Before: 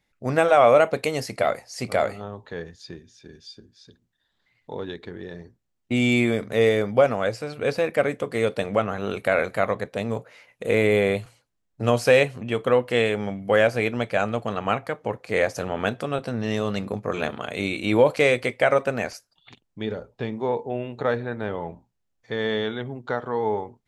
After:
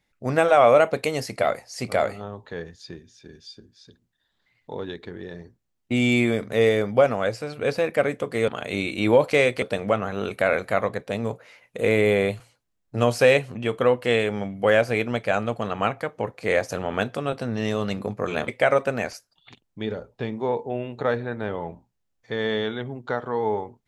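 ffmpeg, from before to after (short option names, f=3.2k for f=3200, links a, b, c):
-filter_complex "[0:a]asplit=4[a][b][c][d];[a]atrim=end=8.482[e];[b]atrim=start=17.338:end=18.482[f];[c]atrim=start=8.478:end=17.342[g];[d]atrim=start=18.478[h];[e][f]acrossfade=d=0.004:c1=hsin:c2=hsin[i];[i][g]acrossfade=d=0.004:c1=hsin:c2=hsin[j];[j][h]acrossfade=d=0.004:c1=hsin:c2=hsin"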